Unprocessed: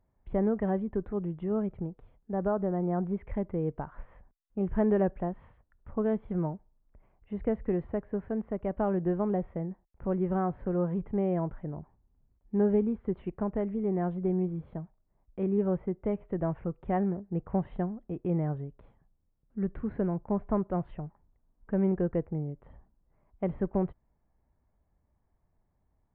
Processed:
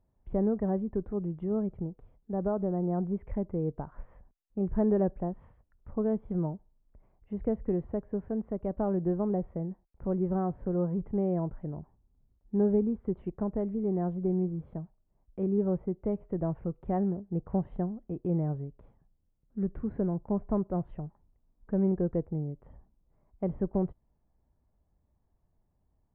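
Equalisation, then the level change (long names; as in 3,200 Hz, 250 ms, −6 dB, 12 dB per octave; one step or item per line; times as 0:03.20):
tilt shelving filter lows +5.5 dB, about 1,400 Hz
dynamic equaliser 2,100 Hz, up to −4 dB, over −45 dBFS, Q 0.82
−5.0 dB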